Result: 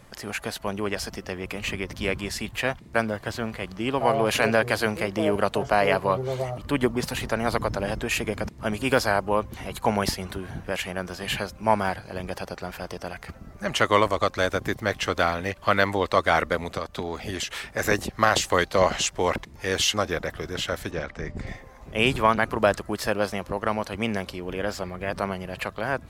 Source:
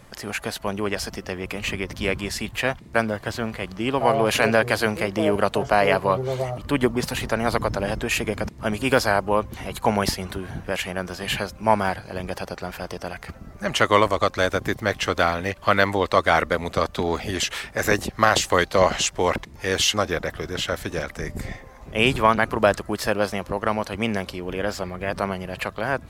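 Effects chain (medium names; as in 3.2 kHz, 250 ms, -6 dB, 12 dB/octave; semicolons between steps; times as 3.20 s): 16.58–17.61 s: compression 6:1, threshold -24 dBFS, peak gain reduction 8 dB; 20.91–21.47 s: distance through air 120 m; trim -2.5 dB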